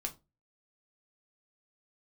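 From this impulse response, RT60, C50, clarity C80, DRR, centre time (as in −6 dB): 0.25 s, 17.0 dB, 24.5 dB, 3.0 dB, 8 ms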